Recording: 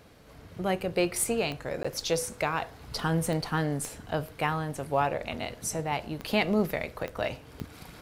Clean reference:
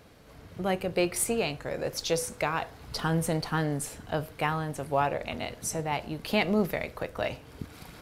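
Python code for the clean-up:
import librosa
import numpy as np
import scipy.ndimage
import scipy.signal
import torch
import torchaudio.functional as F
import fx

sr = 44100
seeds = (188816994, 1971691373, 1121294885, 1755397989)

y = fx.fix_declick_ar(x, sr, threshold=10.0)
y = fx.fix_interpolate(y, sr, at_s=(1.83,), length_ms=15.0)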